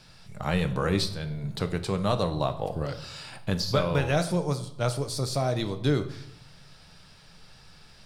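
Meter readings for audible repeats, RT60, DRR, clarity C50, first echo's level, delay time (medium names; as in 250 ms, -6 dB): no echo, 0.75 s, 8.5 dB, 13.0 dB, no echo, no echo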